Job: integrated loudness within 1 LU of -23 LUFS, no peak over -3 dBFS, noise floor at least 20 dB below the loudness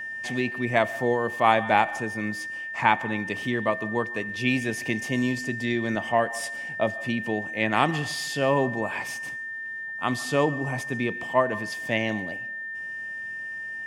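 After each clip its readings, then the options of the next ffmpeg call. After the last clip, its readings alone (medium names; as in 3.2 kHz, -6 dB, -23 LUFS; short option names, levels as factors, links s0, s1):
steady tone 1.8 kHz; tone level -32 dBFS; loudness -26.5 LUFS; peak level -4.0 dBFS; loudness target -23.0 LUFS
-> -af "bandreject=f=1800:w=30"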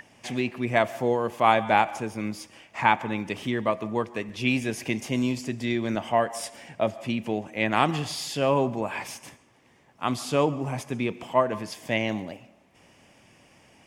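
steady tone not found; loudness -26.5 LUFS; peak level -4.0 dBFS; loudness target -23.0 LUFS
-> -af "volume=1.5,alimiter=limit=0.708:level=0:latency=1"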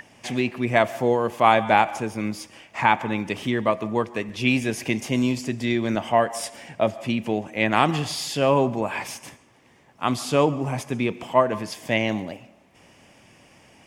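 loudness -23.5 LUFS; peak level -3.0 dBFS; noise floor -56 dBFS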